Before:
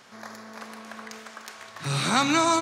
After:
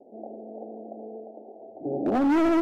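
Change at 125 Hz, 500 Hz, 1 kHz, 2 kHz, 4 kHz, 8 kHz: -12.5 dB, +3.0 dB, -6.0 dB, -9.5 dB, under -15 dB, under -20 dB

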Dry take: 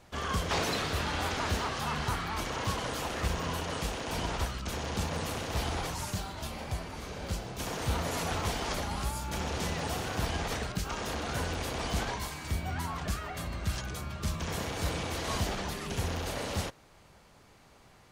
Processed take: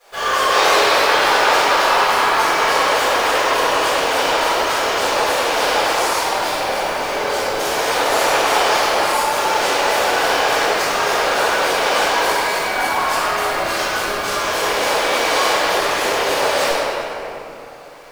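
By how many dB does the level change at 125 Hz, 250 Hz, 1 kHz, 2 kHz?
-6.5 dB, +8.0 dB, +20.5 dB, +20.5 dB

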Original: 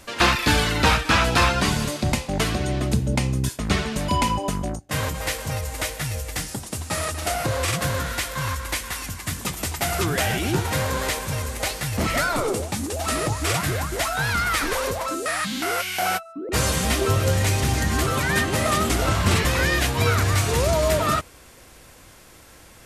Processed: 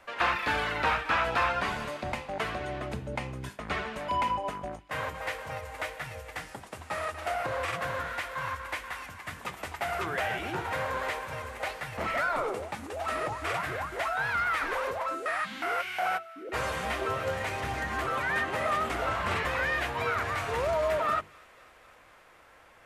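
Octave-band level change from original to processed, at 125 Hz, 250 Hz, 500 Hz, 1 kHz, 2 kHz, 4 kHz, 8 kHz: -17.5 dB, -15.0 dB, -7.0 dB, -4.5 dB, -5.5 dB, -13.5 dB, -20.5 dB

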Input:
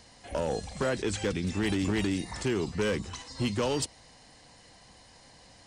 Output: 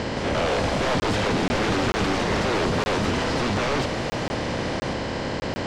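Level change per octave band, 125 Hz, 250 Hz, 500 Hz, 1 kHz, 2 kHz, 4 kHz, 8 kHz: +7.5 dB, +6.0 dB, +7.5 dB, +14.5 dB, +11.0 dB, +9.5 dB, +3.5 dB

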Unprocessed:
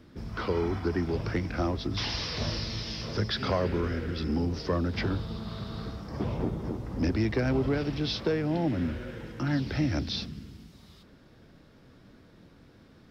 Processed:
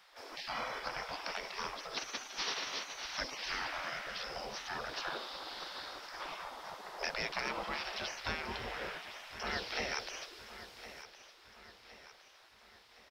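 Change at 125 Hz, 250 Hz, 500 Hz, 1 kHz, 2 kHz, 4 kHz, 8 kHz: -26.0 dB, -23.0 dB, -13.0 dB, -2.0 dB, 0.0 dB, -3.5 dB, no reading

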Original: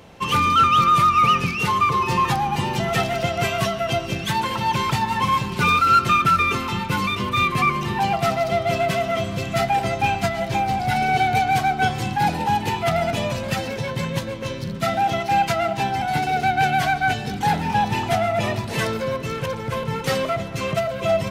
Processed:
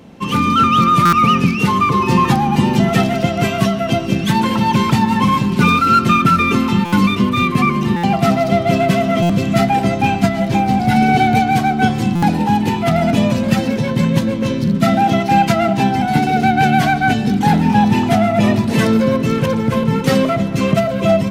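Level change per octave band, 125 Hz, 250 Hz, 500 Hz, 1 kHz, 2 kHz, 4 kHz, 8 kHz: +9.0 dB, +14.5 dB, +6.0 dB, +3.5 dB, +3.0 dB, +3.0 dB, +3.0 dB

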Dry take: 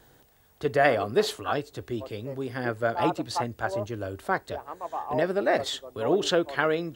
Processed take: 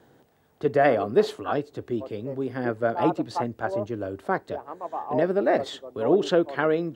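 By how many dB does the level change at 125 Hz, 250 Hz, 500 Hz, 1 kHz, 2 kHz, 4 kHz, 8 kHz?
+1.0 dB, +4.0 dB, +3.0 dB, +1.0 dB, -2.5 dB, -5.5 dB, no reading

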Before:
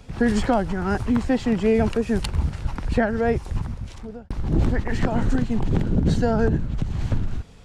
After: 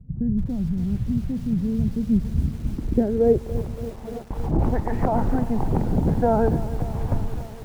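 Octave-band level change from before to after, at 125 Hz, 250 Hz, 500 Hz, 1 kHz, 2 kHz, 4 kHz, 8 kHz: 0.0 dB, -0.5 dB, -0.5 dB, 0.0 dB, -12.0 dB, under -10 dB, no reading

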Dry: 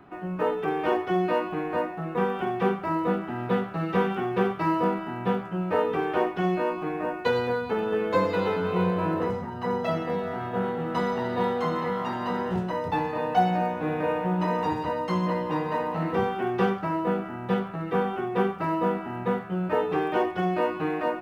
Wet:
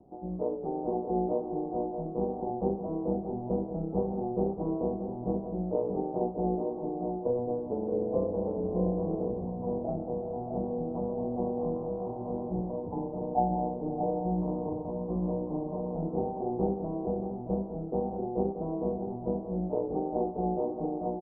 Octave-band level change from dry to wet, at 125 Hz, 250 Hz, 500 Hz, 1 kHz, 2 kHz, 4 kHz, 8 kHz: -4.0 dB, -3.5 dB, -4.5 dB, -9.0 dB, under -40 dB, under -40 dB, no reading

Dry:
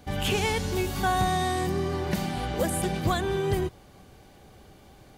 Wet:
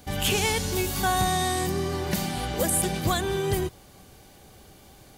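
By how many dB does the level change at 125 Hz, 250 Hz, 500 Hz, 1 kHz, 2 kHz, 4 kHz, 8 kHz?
0.0 dB, 0.0 dB, 0.0 dB, +0.5 dB, +1.5 dB, +4.0 dB, +8.5 dB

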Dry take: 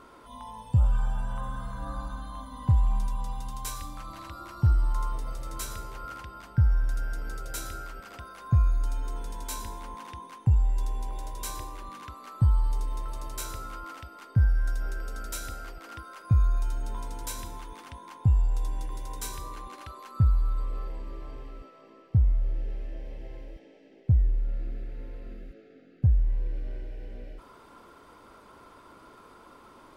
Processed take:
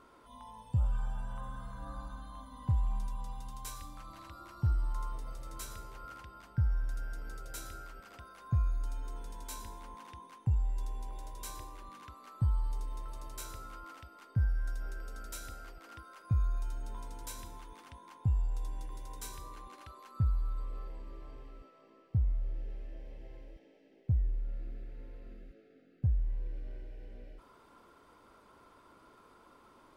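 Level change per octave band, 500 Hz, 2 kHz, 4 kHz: -8.0 dB, -8.0 dB, -8.0 dB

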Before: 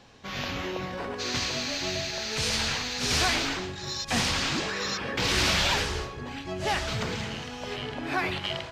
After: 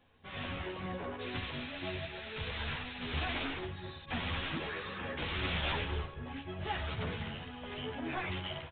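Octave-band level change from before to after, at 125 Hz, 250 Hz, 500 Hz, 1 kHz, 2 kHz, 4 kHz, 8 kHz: -5.0 dB, -7.5 dB, -8.5 dB, -9.0 dB, -9.5 dB, -13.0 dB, under -40 dB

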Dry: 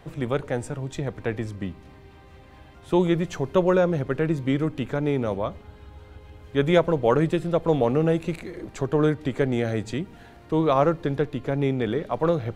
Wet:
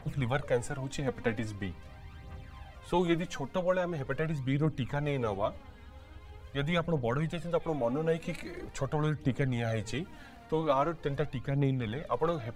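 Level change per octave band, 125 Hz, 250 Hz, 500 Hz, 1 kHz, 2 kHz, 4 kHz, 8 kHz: -5.5 dB, -9.0 dB, -9.0 dB, -6.0 dB, -4.5 dB, -4.5 dB, no reading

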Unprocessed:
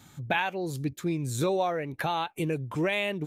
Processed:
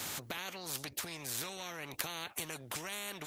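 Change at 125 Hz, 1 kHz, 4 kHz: -18.0 dB, -14.5 dB, -3.0 dB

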